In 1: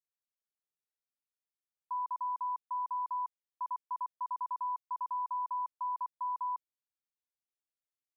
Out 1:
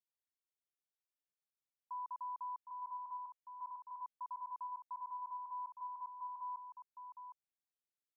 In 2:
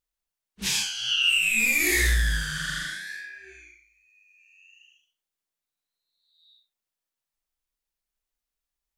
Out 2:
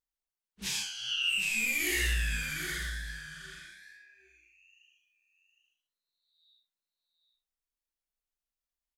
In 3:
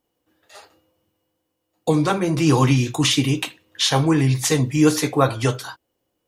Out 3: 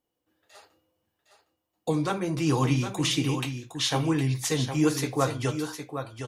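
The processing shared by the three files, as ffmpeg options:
-af "aecho=1:1:761:0.376,volume=0.398"

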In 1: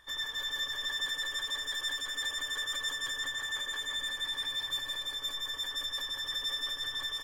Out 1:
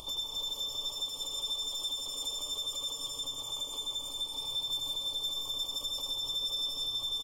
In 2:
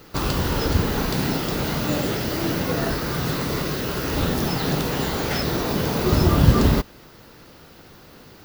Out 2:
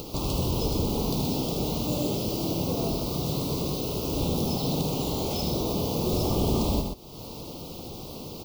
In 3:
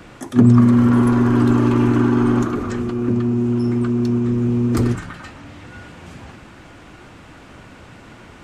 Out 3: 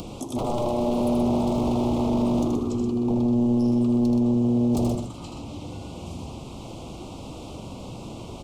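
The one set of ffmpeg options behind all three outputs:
-af "aeval=exprs='0.168*(abs(mod(val(0)/0.168+3,4)-2)-1)':c=same,aecho=1:1:78.72|125.4:0.501|0.447,acompressor=mode=upward:threshold=0.0891:ratio=2.5,asuperstop=centerf=1700:order=4:qfactor=0.81,volume=0.562"

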